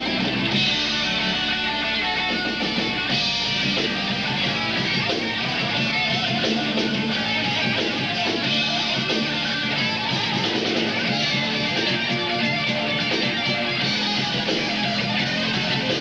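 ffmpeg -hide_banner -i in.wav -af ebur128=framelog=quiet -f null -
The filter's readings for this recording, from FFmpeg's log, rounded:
Integrated loudness:
  I:         -21.0 LUFS
  Threshold: -31.0 LUFS
Loudness range:
  LRA:         0.4 LU
  Threshold: -41.1 LUFS
  LRA low:   -21.2 LUFS
  LRA high:  -20.9 LUFS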